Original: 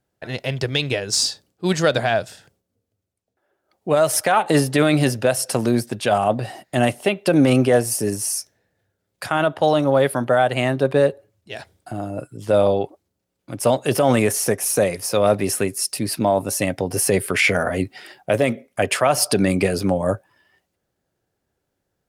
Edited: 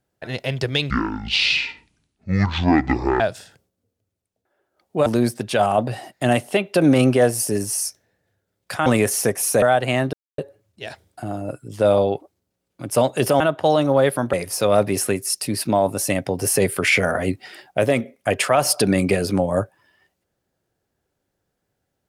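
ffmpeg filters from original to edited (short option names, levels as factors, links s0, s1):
-filter_complex "[0:a]asplit=10[s0][s1][s2][s3][s4][s5][s6][s7][s8][s9];[s0]atrim=end=0.904[s10];[s1]atrim=start=0.9:end=2.12,asetpts=PTS-STARTPTS,asetrate=23373,aresample=44100,atrim=end_sample=101513,asetpts=PTS-STARTPTS[s11];[s2]atrim=start=2.116:end=3.982[s12];[s3]atrim=start=5.578:end=9.382[s13];[s4]atrim=start=14.088:end=14.852[s14];[s5]atrim=start=10.308:end=10.82,asetpts=PTS-STARTPTS,afade=t=out:st=0.508:d=0.004:c=hsin[s15];[s6]atrim=start=10.82:end=11.07,asetpts=PTS-STARTPTS,volume=0[s16];[s7]atrim=start=11.07:end=14.092,asetpts=PTS-STARTPTS,afade=t=in:d=0.004:c=hsin[s17];[s8]atrim=start=9.378:end=10.312[s18];[s9]atrim=start=14.848[s19];[s10][s11]acrossfade=d=0.004:c1=hsin:c2=hsin[s20];[s20][s12]acrossfade=d=0.004:c1=hsin:c2=hsin[s21];[s21][s13]acrossfade=d=0.004:c1=hsin:c2=hsin[s22];[s22][s14]acrossfade=d=0.004:c1=hsin:c2=hsin[s23];[s15][s16][s17]concat=n=3:v=0:a=1[s24];[s23][s24]acrossfade=d=0.004:c1=hsin:c2=hsin[s25];[s25][s18]acrossfade=d=0.004:c1=hsin:c2=hsin[s26];[s26][s19]acrossfade=d=0.004:c1=hsin:c2=hsin"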